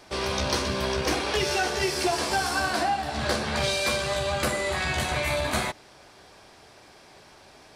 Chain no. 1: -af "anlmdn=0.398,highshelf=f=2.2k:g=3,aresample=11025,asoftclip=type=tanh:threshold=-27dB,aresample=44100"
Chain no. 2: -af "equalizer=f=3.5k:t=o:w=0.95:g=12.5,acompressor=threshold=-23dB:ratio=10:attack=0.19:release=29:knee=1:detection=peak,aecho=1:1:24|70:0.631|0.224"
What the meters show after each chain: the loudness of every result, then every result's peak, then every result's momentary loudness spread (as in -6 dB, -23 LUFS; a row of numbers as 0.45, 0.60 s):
-30.0, -25.5 LUFS; -22.0, -15.5 dBFS; 2, 19 LU